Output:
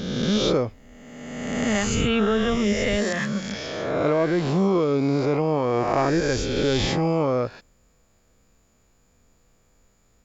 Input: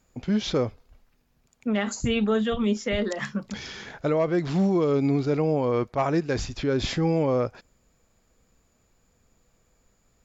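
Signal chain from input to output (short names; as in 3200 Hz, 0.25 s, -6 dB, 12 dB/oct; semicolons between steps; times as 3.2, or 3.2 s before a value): spectral swells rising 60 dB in 1.66 s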